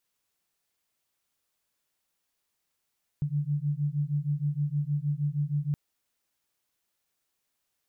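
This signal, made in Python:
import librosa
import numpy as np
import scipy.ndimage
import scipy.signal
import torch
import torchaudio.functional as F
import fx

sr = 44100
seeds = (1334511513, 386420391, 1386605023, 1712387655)

y = fx.two_tone_beats(sr, length_s=2.52, hz=143.0, beat_hz=6.4, level_db=-29.0)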